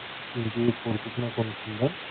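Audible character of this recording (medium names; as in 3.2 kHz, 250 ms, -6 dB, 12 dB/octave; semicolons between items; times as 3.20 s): a buzz of ramps at a fixed pitch in blocks of 8 samples; chopped level 4.4 Hz, depth 65%, duty 25%; a quantiser's noise floor 6-bit, dither triangular; Speex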